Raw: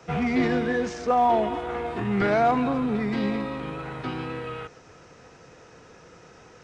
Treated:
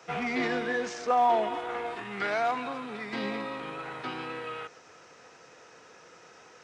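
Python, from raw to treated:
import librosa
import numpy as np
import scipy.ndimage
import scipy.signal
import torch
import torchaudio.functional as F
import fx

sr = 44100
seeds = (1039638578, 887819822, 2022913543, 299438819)

y = fx.highpass(x, sr, hz=fx.steps((0.0, 690.0), (1.95, 1500.0), (3.13, 640.0)), slope=6)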